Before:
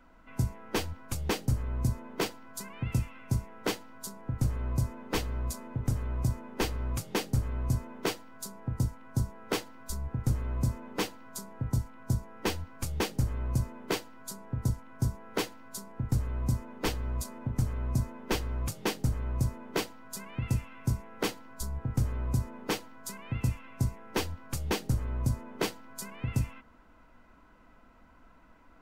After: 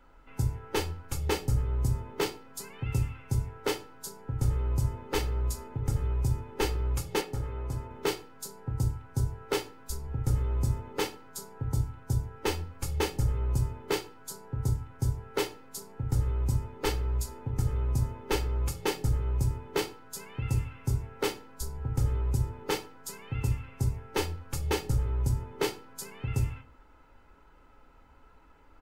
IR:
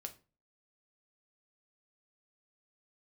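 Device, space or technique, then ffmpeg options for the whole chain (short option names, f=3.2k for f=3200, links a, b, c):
microphone above a desk: -filter_complex "[0:a]aecho=1:1:2.3:0.53[a];[1:a]atrim=start_sample=2205[b];[a][b]afir=irnorm=-1:irlink=0,asettb=1/sr,asplit=3[c][d][e];[c]atrim=end=7.214[f];[d]atrim=start=7.21:end=7.91,asetpts=PTS-STARTPTS,afade=t=in:d=0.004:c=qsin,afade=t=out:st=0.696:d=0.004:c=qsin,bass=f=250:g=-7,treble=f=4k:g=-8[g];[e]atrim=start=7.906[h];[f][g]acrossfade=d=0.004:c1=hsin:c2=qsin[i];[i][h]acrossfade=d=0.004:c1=qsin:c2=hsin,volume=3.5dB"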